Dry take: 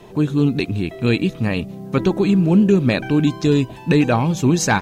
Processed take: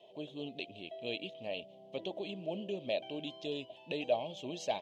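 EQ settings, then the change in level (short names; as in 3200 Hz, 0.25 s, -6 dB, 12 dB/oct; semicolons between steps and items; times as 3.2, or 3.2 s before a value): double band-pass 1400 Hz, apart 2.3 oct; -5.0 dB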